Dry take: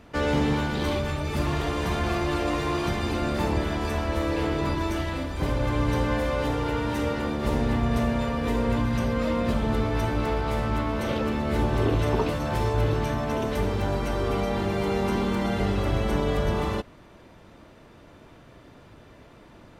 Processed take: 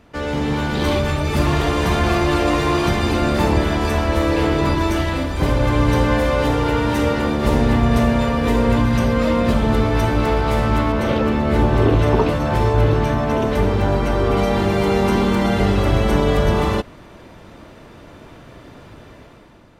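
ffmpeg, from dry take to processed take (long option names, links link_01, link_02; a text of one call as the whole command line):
ffmpeg -i in.wav -filter_complex "[0:a]asettb=1/sr,asplit=3[link_01][link_02][link_03];[link_01]atrim=end=10.924[link_04];[link_02]atrim=start=10.92:end=14.37,asetpts=PTS-STARTPTS,afade=type=in:duration=0.004:curve=qsin,afade=type=out:start_time=3.446:duration=0.004:curve=qsin,highshelf=frequency=3800:gain=-7[link_05];[link_03]atrim=start=14.366[link_06];[link_04][link_05]acrossfade=duration=0.004:curve1=hsin:curve2=qsin[link_07];[link_07][link_06]acrossfade=duration=0.004:curve1=qsin:curve2=hsin,dynaudnorm=framelen=180:gausssize=7:maxgain=9dB" out.wav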